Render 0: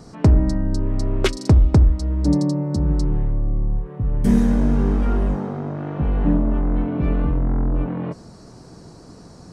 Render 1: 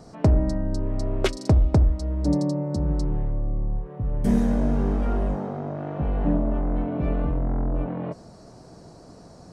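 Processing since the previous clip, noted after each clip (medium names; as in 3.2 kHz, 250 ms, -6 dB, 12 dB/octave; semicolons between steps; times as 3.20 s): peaking EQ 640 Hz +7.5 dB 0.66 oct; trim -5 dB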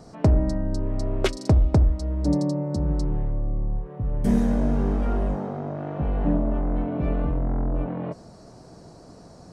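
no audible change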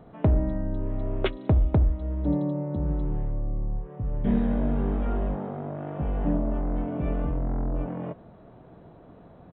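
resampled via 8 kHz; trim -3 dB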